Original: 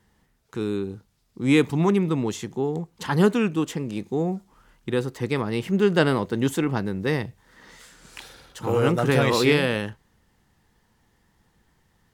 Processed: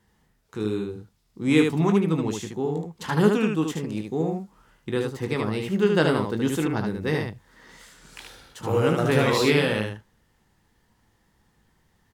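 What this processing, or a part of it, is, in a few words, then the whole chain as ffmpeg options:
slapback doubling: -filter_complex "[0:a]asplit=3[s0][s1][s2];[s1]adelay=19,volume=0.376[s3];[s2]adelay=75,volume=0.631[s4];[s0][s3][s4]amix=inputs=3:normalize=0,volume=0.75"

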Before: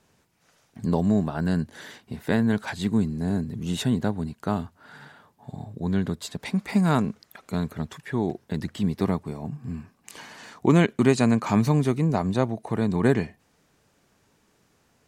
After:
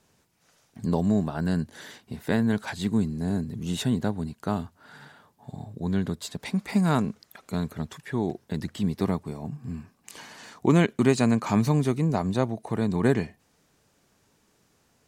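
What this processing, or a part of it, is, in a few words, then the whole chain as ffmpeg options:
exciter from parts: -filter_complex "[0:a]asplit=2[s0][s1];[s1]highpass=2900,asoftclip=type=tanh:threshold=0.0112,volume=0.398[s2];[s0][s2]amix=inputs=2:normalize=0,volume=0.841"

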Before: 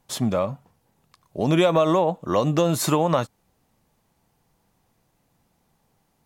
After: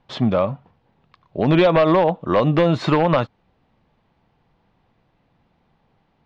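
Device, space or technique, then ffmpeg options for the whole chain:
synthesiser wavefolder: -af "aeval=exprs='0.237*(abs(mod(val(0)/0.237+3,4)-2)-1)':c=same,lowpass=f=3700:w=0.5412,lowpass=f=3700:w=1.3066,volume=1.68"

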